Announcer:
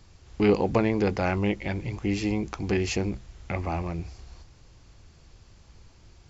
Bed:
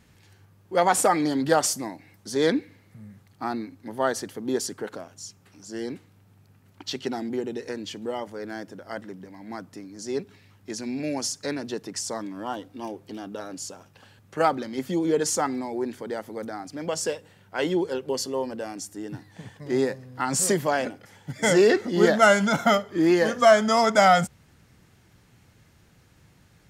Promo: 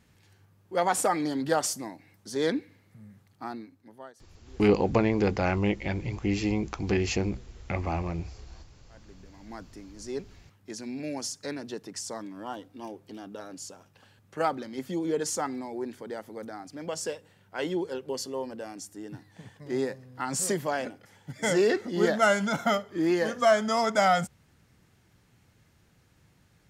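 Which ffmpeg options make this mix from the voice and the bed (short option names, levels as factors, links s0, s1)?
-filter_complex "[0:a]adelay=4200,volume=0.944[s0];[1:a]volume=7.94,afade=t=out:st=3.23:d=0.9:silence=0.0668344,afade=t=in:st=8.89:d=0.7:silence=0.0707946[s1];[s0][s1]amix=inputs=2:normalize=0"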